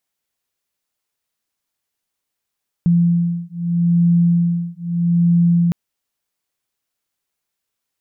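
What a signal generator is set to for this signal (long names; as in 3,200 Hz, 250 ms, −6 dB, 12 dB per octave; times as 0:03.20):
two tones that beat 171 Hz, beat 0.79 Hz, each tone −16 dBFS 2.86 s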